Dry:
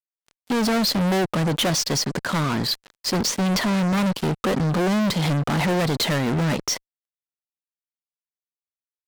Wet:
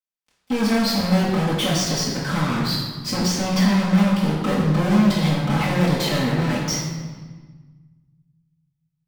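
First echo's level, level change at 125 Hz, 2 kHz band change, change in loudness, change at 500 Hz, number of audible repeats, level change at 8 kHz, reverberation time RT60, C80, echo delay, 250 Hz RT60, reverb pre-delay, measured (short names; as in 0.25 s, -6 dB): none, +3.0 dB, +0.5 dB, +1.5 dB, 0.0 dB, none, -1.0 dB, 1.4 s, 3.0 dB, none, 2.0 s, 3 ms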